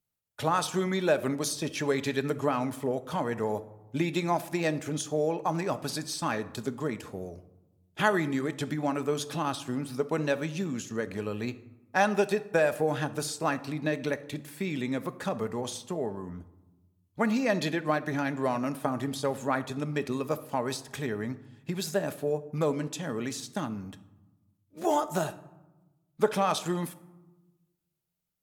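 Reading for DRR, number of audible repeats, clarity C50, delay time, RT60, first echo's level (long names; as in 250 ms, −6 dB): 10.5 dB, no echo audible, 16.0 dB, no echo audible, 1.1 s, no echo audible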